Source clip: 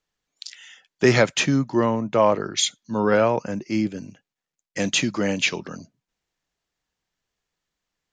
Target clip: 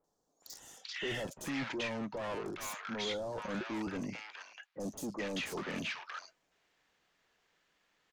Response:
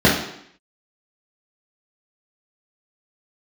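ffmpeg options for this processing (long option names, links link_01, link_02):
-filter_complex "[0:a]asplit=2[link_01][link_02];[link_02]highpass=frequency=720:poles=1,volume=20dB,asoftclip=type=tanh:threshold=-5dB[link_03];[link_01][link_03]amix=inputs=2:normalize=0,lowpass=frequency=1500:poles=1,volume=-6dB,areverse,acompressor=threshold=-28dB:ratio=10,areverse,highshelf=frequency=2600:gain=3,asoftclip=type=tanh:threshold=-34.5dB,acrossover=split=910|5600[link_04][link_05][link_06];[link_06]adelay=40[link_07];[link_05]adelay=430[link_08];[link_04][link_08][link_07]amix=inputs=3:normalize=0"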